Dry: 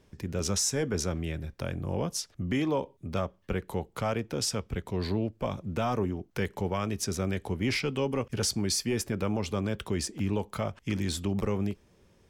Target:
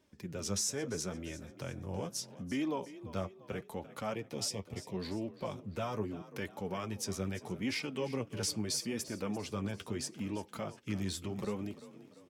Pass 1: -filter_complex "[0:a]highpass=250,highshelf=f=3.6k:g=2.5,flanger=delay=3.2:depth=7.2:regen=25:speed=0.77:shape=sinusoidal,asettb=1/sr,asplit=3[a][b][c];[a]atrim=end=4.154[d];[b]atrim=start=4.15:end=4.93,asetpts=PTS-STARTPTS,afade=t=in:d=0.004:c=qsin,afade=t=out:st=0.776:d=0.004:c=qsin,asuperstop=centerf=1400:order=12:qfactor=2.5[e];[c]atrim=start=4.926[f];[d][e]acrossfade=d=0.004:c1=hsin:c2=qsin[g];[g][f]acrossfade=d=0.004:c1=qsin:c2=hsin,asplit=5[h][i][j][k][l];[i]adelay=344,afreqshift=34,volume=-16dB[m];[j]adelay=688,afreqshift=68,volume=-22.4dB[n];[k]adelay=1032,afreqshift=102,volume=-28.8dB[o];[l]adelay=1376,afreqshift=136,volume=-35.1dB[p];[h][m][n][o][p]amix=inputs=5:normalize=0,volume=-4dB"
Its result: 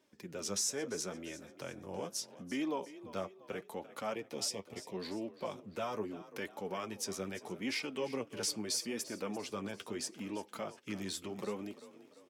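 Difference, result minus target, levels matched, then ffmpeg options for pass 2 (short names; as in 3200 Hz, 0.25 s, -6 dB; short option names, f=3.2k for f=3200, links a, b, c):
125 Hz band -8.5 dB
-filter_complex "[0:a]highpass=93,highshelf=f=3.6k:g=2.5,flanger=delay=3.2:depth=7.2:regen=25:speed=0.77:shape=sinusoidal,asettb=1/sr,asplit=3[a][b][c];[a]atrim=end=4.154[d];[b]atrim=start=4.15:end=4.93,asetpts=PTS-STARTPTS,afade=t=in:d=0.004:c=qsin,afade=t=out:st=0.776:d=0.004:c=qsin,asuperstop=centerf=1400:order=12:qfactor=2.5[e];[c]atrim=start=4.926[f];[d][e]acrossfade=d=0.004:c1=hsin:c2=qsin[g];[g][f]acrossfade=d=0.004:c1=qsin:c2=hsin,asplit=5[h][i][j][k][l];[i]adelay=344,afreqshift=34,volume=-16dB[m];[j]adelay=688,afreqshift=68,volume=-22.4dB[n];[k]adelay=1032,afreqshift=102,volume=-28.8dB[o];[l]adelay=1376,afreqshift=136,volume=-35.1dB[p];[h][m][n][o][p]amix=inputs=5:normalize=0,volume=-4dB"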